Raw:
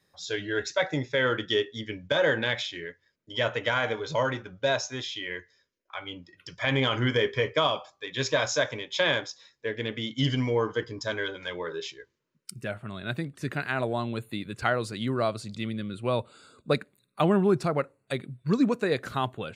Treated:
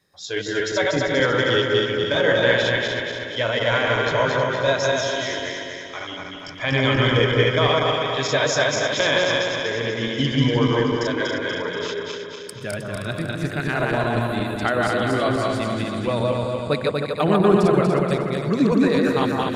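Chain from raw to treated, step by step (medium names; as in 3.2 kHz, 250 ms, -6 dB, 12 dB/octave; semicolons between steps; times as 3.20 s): backward echo that repeats 120 ms, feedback 74%, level -1 dB; echo whose repeats swap between lows and highs 156 ms, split 1.5 kHz, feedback 56%, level -5 dB; trim +2.5 dB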